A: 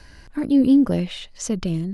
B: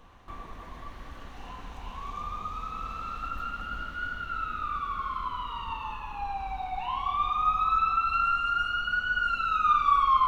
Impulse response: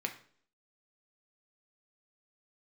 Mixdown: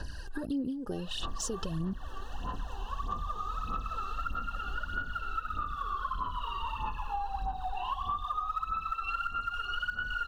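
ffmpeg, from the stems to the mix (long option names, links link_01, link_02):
-filter_complex "[0:a]acompressor=threshold=-30dB:ratio=3,volume=-1.5dB[link_01];[1:a]adelay=950,volume=-1dB[link_02];[link_01][link_02]amix=inputs=2:normalize=0,aphaser=in_gain=1:out_gain=1:delay=2.6:decay=0.68:speed=1.6:type=sinusoidal,asuperstop=centerf=2200:order=20:qfactor=3.1,acompressor=threshold=-30dB:ratio=12"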